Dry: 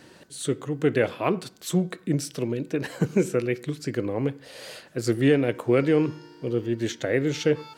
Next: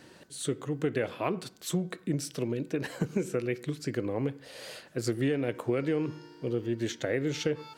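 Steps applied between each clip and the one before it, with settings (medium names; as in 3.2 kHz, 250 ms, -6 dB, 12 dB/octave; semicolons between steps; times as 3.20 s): compression 5:1, threshold -22 dBFS, peak gain reduction 7.5 dB; trim -3 dB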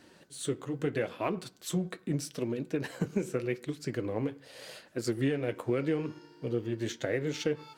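flange 0.81 Hz, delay 2.8 ms, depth 8.4 ms, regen -53%; in parallel at -8 dB: crossover distortion -48 dBFS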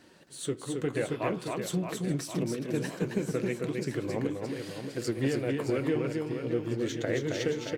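reverse bouncing-ball echo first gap 270 ms, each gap 1.3×, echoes 5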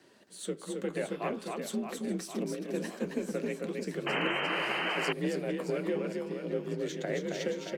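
painted sound noise, 4.06–5.13 s, 270–3100 Hz -29 dBFS; frequency shift +45 Hz; trim -3.5 dB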